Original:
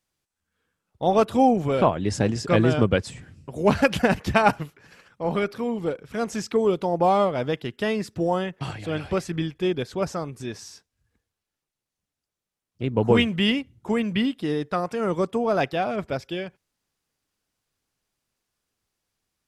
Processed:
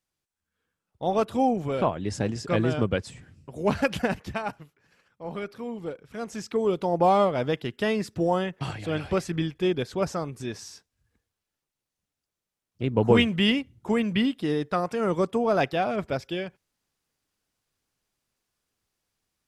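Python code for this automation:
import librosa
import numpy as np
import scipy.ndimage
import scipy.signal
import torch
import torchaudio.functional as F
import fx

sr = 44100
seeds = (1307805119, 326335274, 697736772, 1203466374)

y = fx.gain(x, sr, db=fx.line((4.02, -5.0), (4.54, -15.0), (5.68, -7.5), (6.22, -7.5), (6.96, -0.5)))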